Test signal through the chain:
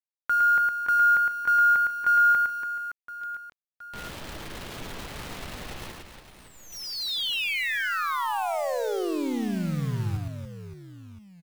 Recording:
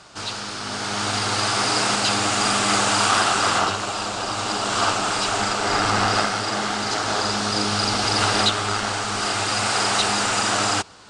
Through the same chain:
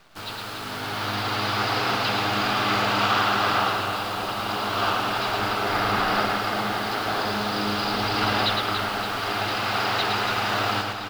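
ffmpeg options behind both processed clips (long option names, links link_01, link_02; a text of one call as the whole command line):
ffmpeg -i in.wav -filter_complex "[0:a]lowpass=frequency=4200:width=0.5412,lowpass=frequency=4200:width=1.3066,acrusher=bits=7:dc=4:mix=0:aa=0.000001,asplit=2[link_01][link_02];[link_02]aecho=0:1:110|286|567.6|1018|1739:0.631|0.398|0.251|0.158|0.1[link_03];[link_01][link_03]amix=inputs=2:normalize=0,volume=-4dB" out.wav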